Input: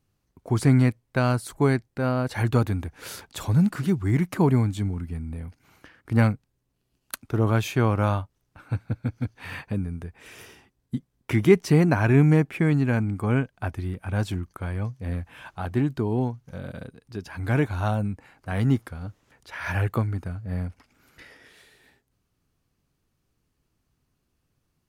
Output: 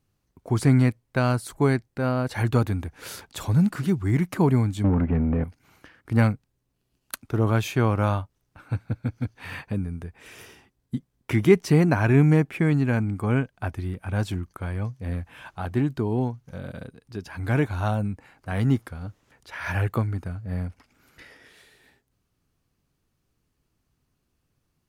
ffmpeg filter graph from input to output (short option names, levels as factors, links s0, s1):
-filter_complex "[0:a]asettb=1/sr,asplit=3[s0][s1][s2];[s0]atrim=end=4.844[s3];[s1]atrim=start=4.84:end=5.44,asetpts=PTS-STARTPTS,afade=t=in:d=0.004:c=qsin,afade=t=out:st=0.596:d=0.004:c=qsin,lowpass=f=2700:w=0.5412,lowpass=f=2700:w=1.3066,tiltshelf=f=850:g=6,asplit=2[s4][s5];[s5]highpass=f=720:p=1,volume=22.4,asoftclip=type=tanh:threshold=0.251[s6];[s4][s6]amix=inputs=2:normalize=0,lowpass=f=1600:p=1,volume=0.501[s7];[s2]atrim=start=5.436[s8];[s3][s7]acrossfade=d=0.004:c1=hsin:c2=qsin[s9];[s9][s8]acrossfade=d=0.004:c1=qsin:c2=hsin"